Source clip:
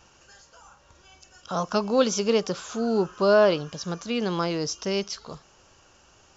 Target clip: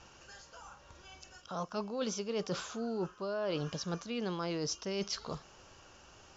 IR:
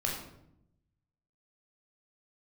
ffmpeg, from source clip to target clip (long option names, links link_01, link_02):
-af "lowpass=6600,areverse,acompressor=threshold=-33dB:ratio=10,areverse"